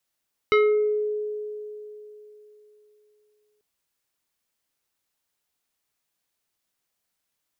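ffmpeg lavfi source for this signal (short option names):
-f lavfi -i "aevalsrc='0.2*pow(10,-3*t/3.41)*sin(2*PI*422*t+1.1*pow(10,-3*t/0.64)*sin(2*PI*4.05*422*t))':d=3.09:s=44100"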